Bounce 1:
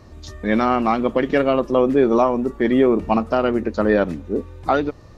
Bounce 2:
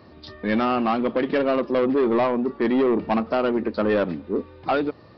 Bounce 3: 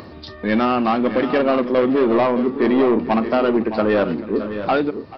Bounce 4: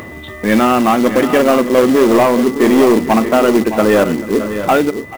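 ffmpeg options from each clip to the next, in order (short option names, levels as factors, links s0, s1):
-af "highpass=150,aresample=11025,asoftclip=type=tanh:threshold=0.178,aresample=44100"
-filter_complex "[0:a]acompressor=mode=upward:threshold=0.0178:ratio=2.5,asplit=2[s0][s1];[s1]aecho=0:1:41|437|616|645:0.141|0.126|0.282|0.178[s2];[s0][s2]amix=inputs=2:normalize=0,volume=1.5"
-af "aeval=exprs='val(0)+0.01*sin(2*PI*2000*n/s)':c=same,aresample=8000,aresample=44100,acrusher=bits=4:mode=log:mix=0:aa=0.000001,volume=2"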